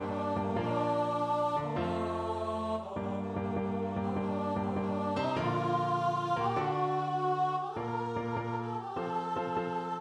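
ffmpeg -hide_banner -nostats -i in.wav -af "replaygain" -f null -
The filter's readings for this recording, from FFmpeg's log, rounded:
track_gain = +15.0 dB
track_peak = 0.079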